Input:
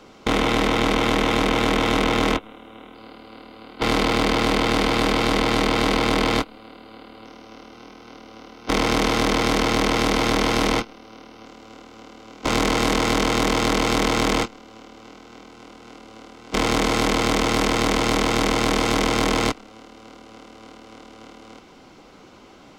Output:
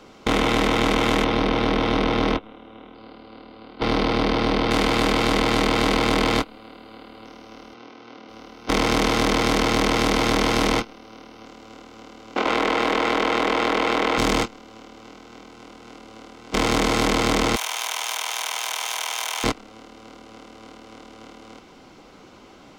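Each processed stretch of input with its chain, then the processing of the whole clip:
0:01.24–0:04.71: Savitzky-Golay smoothing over 15 samples + parametric band 2,200 Hz −4 dB 2 octaves
0:07.74–0:08.29: band-pass filter 120–4,900 Hz + mains-hum notches 50/100/150/200 Hz
0:12.36–0:14.18: three-way crossover with the lows and the highs turned down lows −17 dB, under 280 Hz, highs −16 dB, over 3,700 Hz + envelope flattener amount 100%
0:17.56–0:19.44: lower of the sound and its delayed copy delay 0.32 ms + four-pole ladder high-pass 710 Hz, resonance 40% + spectral tilt +3 dB per octave
whole clip: no processing

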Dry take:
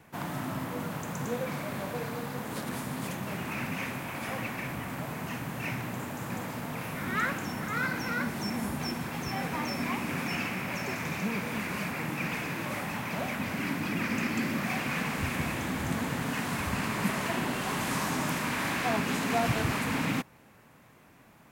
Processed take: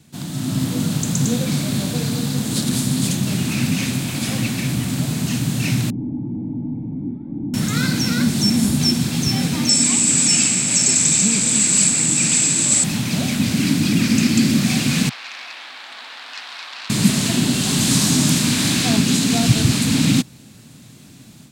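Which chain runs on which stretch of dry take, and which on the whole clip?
0:05.90–0:07.54: sign of each sample alone + formant resonators in series u + low-shelf EQ 180 Hz +9 dB
0:09.69–0:12.84: low-pass with resonance 7,800 Hz, resonance Q 16 + low-shelf EQ 190 Hz −10 dB
0:15.09–0:16.90: high-pass filter 810 Hz 24 dB per octave + high-frequency loss of the air 420 metres + saturating transformer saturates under 1,900 Hz
whole clip: octave-band graphic EQ 125/250/500/1,000/2,000/4,000/8,000 Hz +8/+7/−5/−9/−6/+11/+11 dB; automatic gain control gain up to 8.5 dB; level +1 dB

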